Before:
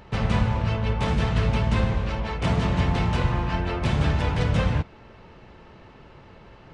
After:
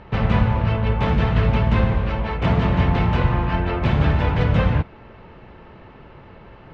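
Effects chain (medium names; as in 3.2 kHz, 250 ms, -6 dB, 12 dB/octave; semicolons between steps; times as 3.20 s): low-pass 2.9 kHz 12 dB/octave; trim +4.5 dB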